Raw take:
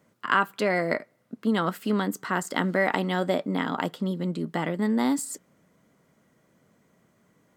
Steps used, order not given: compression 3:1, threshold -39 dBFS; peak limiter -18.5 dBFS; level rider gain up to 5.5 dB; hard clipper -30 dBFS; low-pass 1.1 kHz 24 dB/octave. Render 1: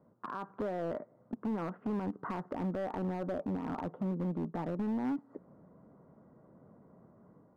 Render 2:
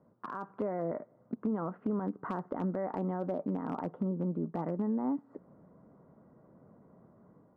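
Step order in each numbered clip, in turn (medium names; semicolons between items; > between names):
peak limiter > low-pass > compression > level rider > hard clipper; peak limiter > low-pass > compression > hard clipper > level rider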